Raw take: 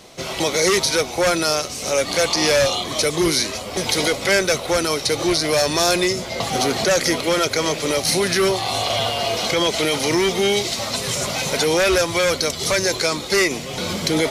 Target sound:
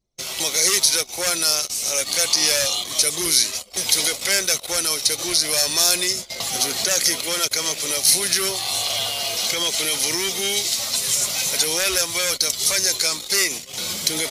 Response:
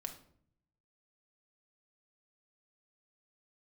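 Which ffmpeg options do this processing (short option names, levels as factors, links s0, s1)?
-af "crystalizer=i=7.5:c=0,anlmdn=10000,volume=0.251"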